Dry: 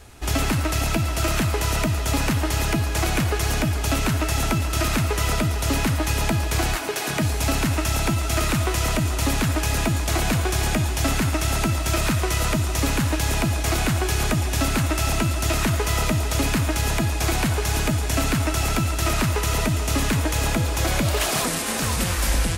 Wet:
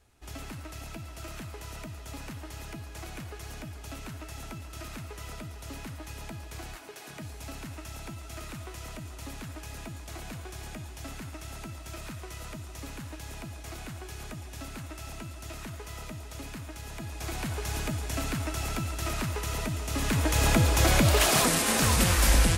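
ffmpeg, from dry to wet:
-af "afade=t=in:st=16.9:d=0.77:silence=0.354813,afade=t=in:st=19.91:d=0.67:silence=0.316228"

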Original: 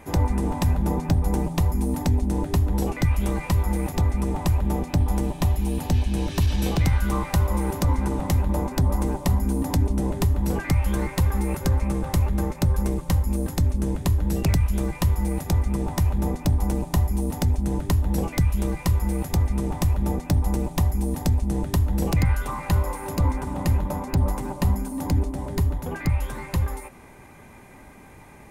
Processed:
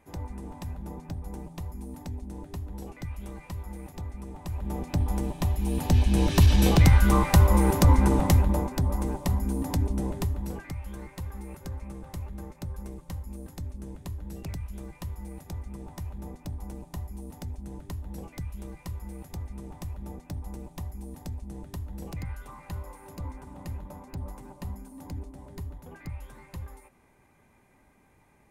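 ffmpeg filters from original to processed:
-af "volume=3.5dB,afade=t=in:st=4.43:d=0.54:silence=0.298538,afade=t=in:st=5.55:d=0.78:silence=0.375837,afade=t=out:st=8.17:d=0.55:silence=0.375837,afade=t=out:st=10.01:d=0.72:silence=0.298538"

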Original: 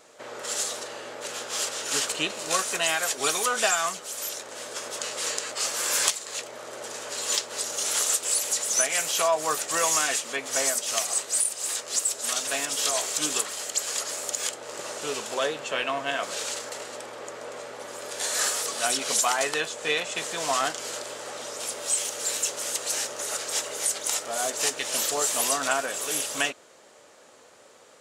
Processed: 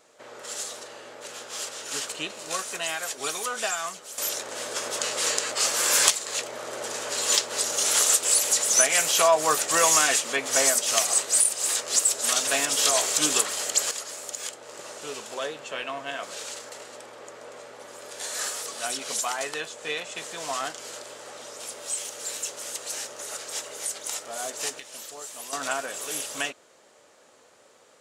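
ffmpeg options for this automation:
-af "asetnsamples=n=441:p=0,asendcmd='4.18 volume volume 4dB;13.91 volume volume -5dB;24.8 volume volume -14dB;25.53 volume volume -3.5dB',volume=-5dB"

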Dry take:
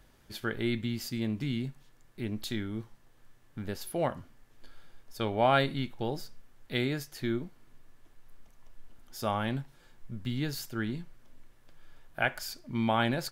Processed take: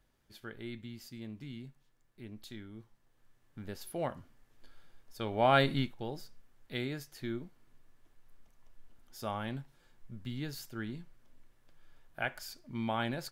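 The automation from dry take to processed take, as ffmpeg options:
-af "volume=2dB,afade=t=in:st=2.78:d=1.11:silence=0.446684,afade=t=in:st=5.25:d=0.53:silence=0.421697,afade=t=out:st=5.78:d=0.17:silence=0.375837"

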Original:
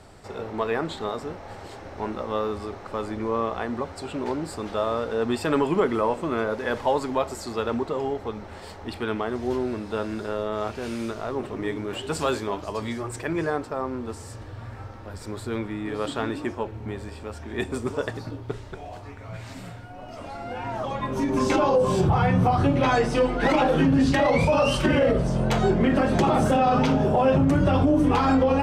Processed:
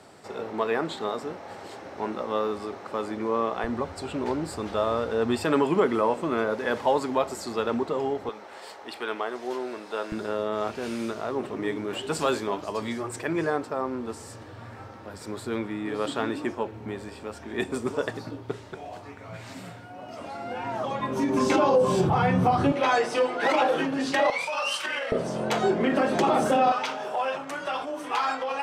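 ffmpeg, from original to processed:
-af "asetnsamples=n=441:p=0,asendcmd='3.64 highpass f 46;5.44 highpass f 140;8.29 highpass f 470;10.12 highpass f 150;22.72 highpass f 430;24.3 highpass f 1200;25.12 highpass f 280;26.72 highpass f 920',highpass=180"

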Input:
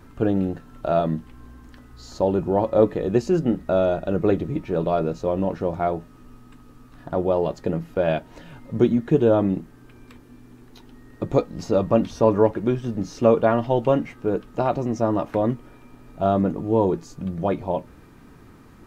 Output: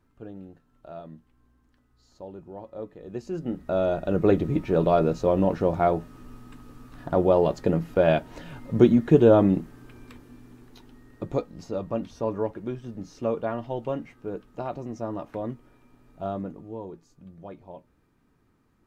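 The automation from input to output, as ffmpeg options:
-af "volume=1.5dB,afade=t=in:st=2.97:d=0.45:silence=0.334965,afade=t=in:st=3.42:d=1.11:silence=0.251189,afade=t=out:st=9.56:d=2.12:silence=0.251189,afade=t=out:st=16.24:d=0.57:silence=0.398107"

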